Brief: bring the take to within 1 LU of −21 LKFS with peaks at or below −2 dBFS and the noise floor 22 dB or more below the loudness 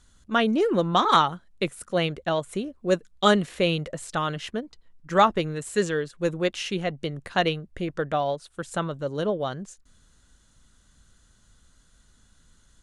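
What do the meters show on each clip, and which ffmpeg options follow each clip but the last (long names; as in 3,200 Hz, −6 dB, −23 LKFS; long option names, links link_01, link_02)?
integrated loudness −25.5 LKFS; sample peak −5.5 dBFS; target loudness −21.0 LKFS
→ -af "volume=4.5dB,alimiter=limit=-2dB:level=0:latency=1"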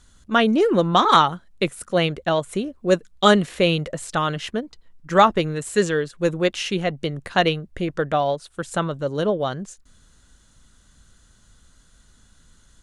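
integrated loudness −21.5 LKFS; sample peak −2.0 dBFS; background noise floor −56 dBFS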